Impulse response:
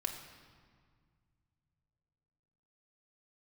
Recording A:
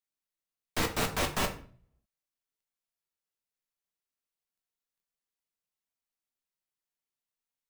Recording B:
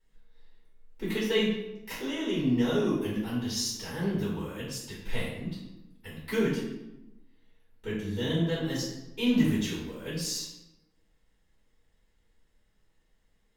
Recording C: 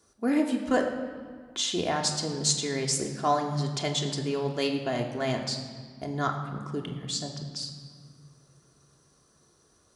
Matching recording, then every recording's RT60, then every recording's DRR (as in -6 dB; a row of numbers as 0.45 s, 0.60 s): C; 0.45 s, 0.95 s, 1.9 s; 2.5 dB, -8.0 dB, 1.0 dB